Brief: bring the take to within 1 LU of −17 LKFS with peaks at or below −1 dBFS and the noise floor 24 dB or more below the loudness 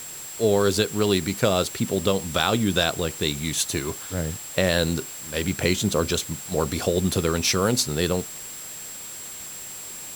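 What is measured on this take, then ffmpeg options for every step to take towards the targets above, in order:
interfering tone 7,600 Hz; level of the tone −37 dBFS; background noise floor −37 dBFS; target noise floor −49 dBFS; integrated loudness −24.5 LKFS; sample peak −5.0 dBFS; target loudness −17.0 LKFS
→ -af "bandreject=frequency=7600:width=30"
-af "afftdn=noise_reduction=12:noise_floor=-37"
-af "volume=7.5dB,alimiter=limit=-1dB:level=0:latency=1"

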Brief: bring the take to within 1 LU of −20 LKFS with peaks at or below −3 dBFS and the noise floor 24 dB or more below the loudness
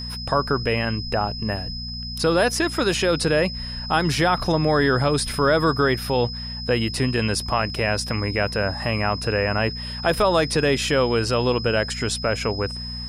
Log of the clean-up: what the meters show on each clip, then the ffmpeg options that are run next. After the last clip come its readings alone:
mains hum 60 Hz; hum harmonics up to 240 Hz; level of the hum −31 dBFS; interfering tone 5,100 Hz; level of the tone −32 dBFS; integrated loudness −22.0 LKFS; sample peak −7.0 dBFS; target loudness −20.0 LKFS
→ -af "bandreject=frequency=60:width_type=h:width=4,bandreject=frequency=120:width_type=h:width=4,bandreject=frequency=180:width_type=h:width=4,bandreject=frequency=240:width_type=h:width=4"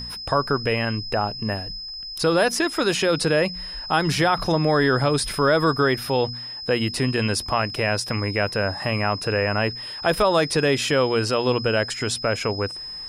mains hum none found; interfering tone 5,100 Hz; level of the tone −32 dBFS
→ -af "bandreject=frequency=5100:width=30"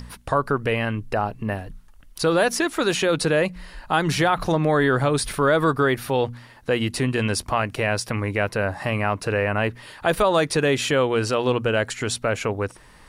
interfering tone none found; integrated loudness −22.5 LKFS; sample peak −7.5 dBFS; target loudness −20.0 LKFS
→ -af "volume=2.5dB"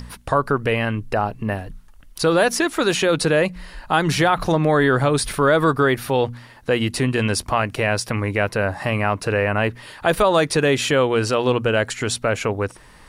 integrated loudness −20.0 LKFS; sample peak −5.0 dBFS; background noise floor −46 dBFS

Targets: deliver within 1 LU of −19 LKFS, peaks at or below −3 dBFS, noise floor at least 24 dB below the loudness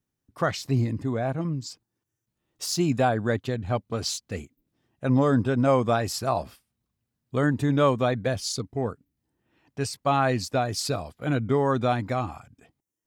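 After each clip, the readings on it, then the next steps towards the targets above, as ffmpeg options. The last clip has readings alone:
integrated loudness −26.0 LKFS; sample peak −11.0 dBFS; target loudness −19.0 LKFS
→ -af "volume=7dB"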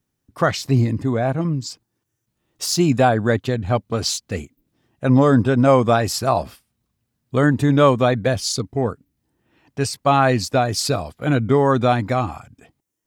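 integrated loudness −19.0 LKFS; sample peak −4.0 dBFS; background noise floor −77 dBFS

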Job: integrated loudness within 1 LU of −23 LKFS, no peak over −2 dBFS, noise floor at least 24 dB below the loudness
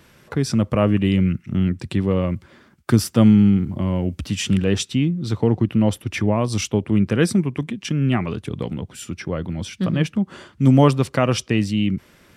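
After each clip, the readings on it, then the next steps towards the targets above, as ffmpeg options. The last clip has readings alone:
integrated loudness −20.5 LKFS; sample peak −1.0 dBFS; target loudness −23.0 LKFS
→ -af "volume=-2.5dB"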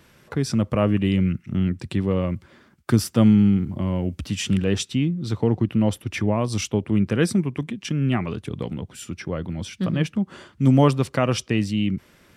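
integrated loudness −23.0 LKFS; sample peak −3.5 dBFS; background noise floor −56 dBFS

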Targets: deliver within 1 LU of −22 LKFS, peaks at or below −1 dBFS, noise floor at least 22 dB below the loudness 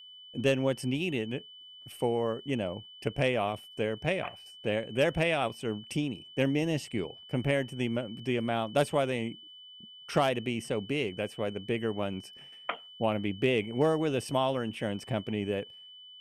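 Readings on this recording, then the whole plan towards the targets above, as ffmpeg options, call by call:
interfering tone 3,000 Hz; level of the tone −48 dBFS; integrated loudness −31.5 LKFS; sample peak −13.0 dBFS; target loudness −22.0 LKFS
→ -af "bandreject=frequency=3000:width=30"
-af "volume=9.5dB"

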